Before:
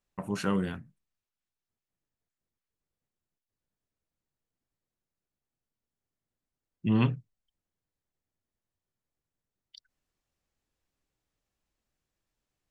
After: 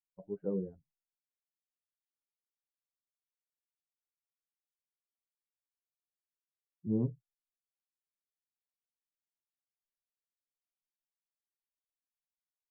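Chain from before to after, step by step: expander on every frequency bin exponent 2; four-pole ladder low-pass 540 Hz, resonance 55%; trim +3.5 dB

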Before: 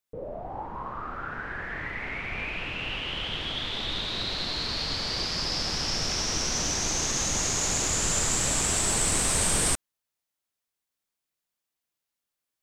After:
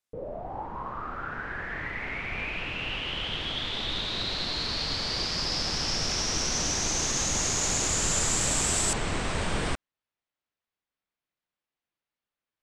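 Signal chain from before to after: low-pass 11 kHz 12 dB/octave, from 8.93 s 3.1 kHz

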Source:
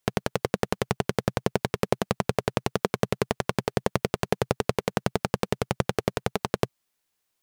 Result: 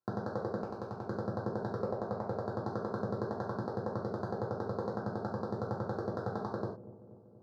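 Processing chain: Chebyshev band-stop 1.5–4.3 kHz, order 3; 1.74–2.30 s: dynamic bell 620 Hz, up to +6 dB, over -37 dBFS, Q 0.9; high-pass 110 Hz 24 dB/octave; peak limiter -14.5 dBFS, peak gain reduction 12.5 dB; 0.59–1.03 s: compression, threshold -30 dBFS, peak gain reduction 6.5 dB; distance through air 320 m; feedback echo behind a low-pass 239 ms, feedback 64%, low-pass 470 Hz, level -12.5 dB; gated-style reverb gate 140 ms falling, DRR -5 dB; trim -7.5 dB

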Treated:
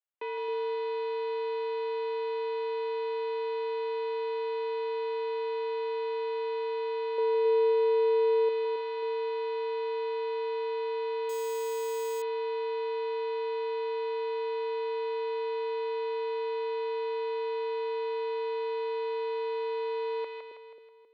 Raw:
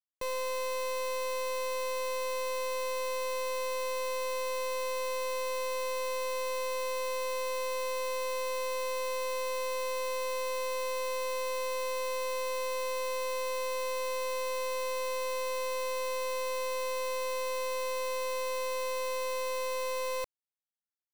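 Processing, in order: mistuned SSB -66 Hz 420–3300 Hz; 7.18–8.49 s: peaking EQ 540 Hz +11.5 dB 0.86 oct; two-band feedback delay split 520 Hz, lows 268 ms, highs 161 ms, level -4 dB; 11.29–12.22 s: careless resampling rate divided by 6×, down none, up hold

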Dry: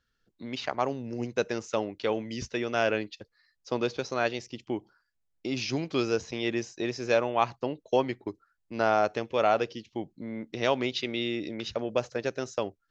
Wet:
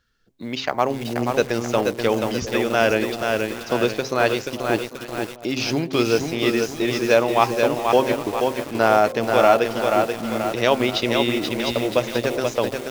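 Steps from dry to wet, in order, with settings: de-hum 132.7 Hz, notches 8; short-mantissa float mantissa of 4-bit; on a send: echo whose repeats swap between lows and highs 398 ms, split 940 Hz, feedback 61%, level -13.5 dB; on the sum: bit-crushed delay 482 ms, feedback 55%, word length 7-bit, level -4 dB; trim +8 dB

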